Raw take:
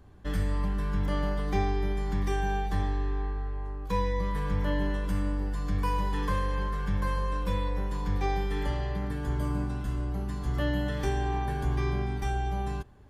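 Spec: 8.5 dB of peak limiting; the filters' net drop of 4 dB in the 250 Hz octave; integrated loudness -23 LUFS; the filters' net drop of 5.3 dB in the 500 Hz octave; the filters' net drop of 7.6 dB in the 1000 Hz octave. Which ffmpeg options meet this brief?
-af "equalizer=f=250:t=o:g=-4.5,equalizer=f=500:t=o:g=-3.5,equalizer=f=1k:t=o:g=-8,volume=12dB,alimiter=limit=-13.5dB:level=0:latency=1"

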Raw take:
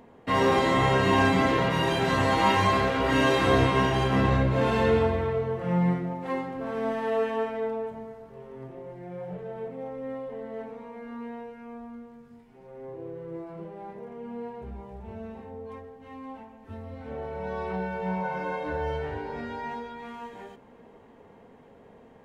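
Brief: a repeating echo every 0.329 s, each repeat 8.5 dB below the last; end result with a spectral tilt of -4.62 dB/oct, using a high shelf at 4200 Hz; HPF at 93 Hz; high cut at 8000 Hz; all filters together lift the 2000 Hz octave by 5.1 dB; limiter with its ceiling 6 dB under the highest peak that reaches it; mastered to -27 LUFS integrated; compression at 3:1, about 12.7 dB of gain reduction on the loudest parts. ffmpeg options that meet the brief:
-af "highpass=93,lowpass=8k,equalizer=f=2k:t=o:g=8,highshelf=f=4.2k:g=-8.5,acompressor=threshold=-35dB:ratio=3,alimiter=level_in=4dB:limit=-24dB:level=0:latency=1,volume=-4dB,aecho=1:1:329|658|987|1316:0.376|0.143|0.0543|0.0206,volume=10.5dB"

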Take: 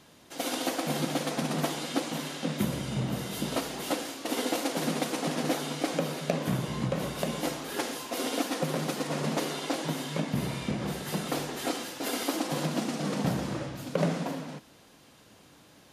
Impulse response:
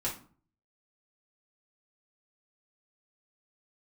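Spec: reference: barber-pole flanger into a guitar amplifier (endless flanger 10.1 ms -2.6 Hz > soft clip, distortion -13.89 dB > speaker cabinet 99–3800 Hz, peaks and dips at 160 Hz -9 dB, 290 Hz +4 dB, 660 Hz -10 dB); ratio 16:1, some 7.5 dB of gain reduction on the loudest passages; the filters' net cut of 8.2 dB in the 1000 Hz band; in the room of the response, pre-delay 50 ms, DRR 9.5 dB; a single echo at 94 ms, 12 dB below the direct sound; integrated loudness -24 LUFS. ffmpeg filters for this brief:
-filter_complex "[0:a]equalizer=f=1k:t=o:g=-7.5,acompressor=threshold=-32dB:ratio=16,aecho=1:1:94:0.251,asplit=2[a][b];[1:a]atrim=start_sample=2205,adelay=50[c];[b][c]afir=irnorm=-1:irlink=0,volume=-14dB[d];[a][d]amix=inputs=2:normalize=0,asplit=2[e][f];[f]adelay=10.1,afreqshift=-2.6[g];[e][g]amix=inputs=2:normalize=1,asoftclip=threshold=-35.5dB,highpass=99,equalizer=f=160:t=q:w=4:g=-9,equalizer=f=290:t=q:w=4:g=4,equalizer=f=660:t=q:w=4:g=-10,lowpass=f=3.8k:w=0.5412,lowpass=f=3.8k:w=1.3066,volume=19dB"

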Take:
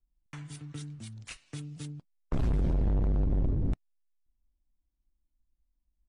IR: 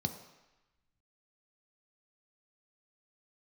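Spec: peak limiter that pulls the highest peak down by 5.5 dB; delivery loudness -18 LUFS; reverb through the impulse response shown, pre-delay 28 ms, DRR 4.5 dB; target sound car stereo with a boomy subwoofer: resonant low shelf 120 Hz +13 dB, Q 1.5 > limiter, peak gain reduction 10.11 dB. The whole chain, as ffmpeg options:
-filter_complex "[0:a]alimiter=level_in=4.5dB:limit=-24dB:level=0:latency=1,volume=-4.5dB,asplit=2[a][b];[1:a]atrim=start_sample=2205,adelay=28[c];[b][c]afir=irnorm=-1:irlink=0,volume=-6.5dB[d];[a][d]amix=inputs=2:normalize=0,lowshelf=f=120:t=q:w=1.5:g=13,volume=11.5dB,alimiter=limit=-6.5dB:level=0:latency=1"

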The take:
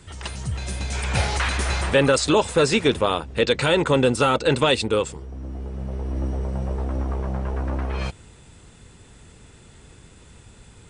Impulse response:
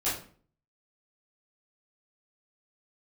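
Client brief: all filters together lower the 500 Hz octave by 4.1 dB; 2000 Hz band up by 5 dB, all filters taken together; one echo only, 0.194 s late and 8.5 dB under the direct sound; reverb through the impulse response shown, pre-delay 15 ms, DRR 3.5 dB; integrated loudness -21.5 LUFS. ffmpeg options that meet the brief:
-filter_complex "[0:a]equalizer=f=500:t=o:g=-5,equalizer=f=2k:t=o:g=7,aecho=1:1:194:0.376,asplit=2[a][b];[1:a]atrim=start_sample=2205,adelay=15[c];[b][c]afir=irnorm=-1:irlink=0,volume=-12dB[d];[a][d]amix=inputs=2:normalize=0,volume=-1.5dB"

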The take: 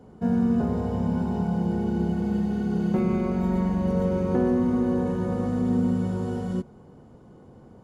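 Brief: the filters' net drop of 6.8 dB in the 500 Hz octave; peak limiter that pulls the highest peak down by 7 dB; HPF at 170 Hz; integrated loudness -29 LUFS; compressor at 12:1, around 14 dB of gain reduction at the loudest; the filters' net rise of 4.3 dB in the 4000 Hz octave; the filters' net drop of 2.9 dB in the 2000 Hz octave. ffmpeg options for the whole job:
-af "highpass=170,equalizer=f=500:t=o:g=-9,equalizer=f=2k:t=o:g=-5,equalizer=f=4k:t=o:g=8,acompressor=threshold=-37dB:ratio=12,volume=15dB,alimiter=limit=-21.5dB:level=0:latency=1"

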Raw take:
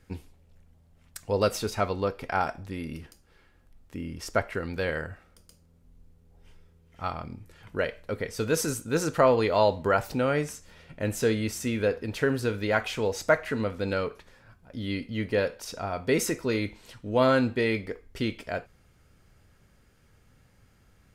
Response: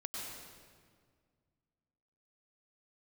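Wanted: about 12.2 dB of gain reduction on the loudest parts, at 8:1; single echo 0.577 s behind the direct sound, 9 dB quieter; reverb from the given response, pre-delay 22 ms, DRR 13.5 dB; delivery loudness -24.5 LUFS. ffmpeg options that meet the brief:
-filter_complex "[0:a]acompressor=threshold=-29dB:ratio=8,aecho=1:1:577:0.355,asplit=2[a][b];[1:a]atrim=start_sample=2205,adelay=22[c];[b][c]afir=irnorm=-1:irlink=0,volume=-14dB[d];[a][d]amix=inputs=2:normalize=0,volume=10.5dB"

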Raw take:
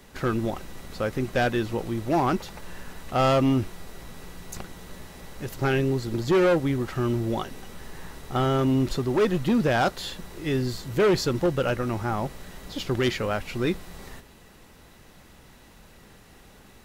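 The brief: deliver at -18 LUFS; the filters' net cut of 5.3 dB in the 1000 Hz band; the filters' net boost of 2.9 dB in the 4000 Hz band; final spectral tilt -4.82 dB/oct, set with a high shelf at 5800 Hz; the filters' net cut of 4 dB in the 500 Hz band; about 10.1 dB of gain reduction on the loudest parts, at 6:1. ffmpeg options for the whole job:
-af "equalizer=f=500:t=o:g=-4,equalizer=f=1k:t=o:g=-6.5,equalizer=f=4k:t=o:g=6,highshelf=f=5.8k:g=-5,acompressor=threshold=-31dB:ratio=6,volume=18.5dB"

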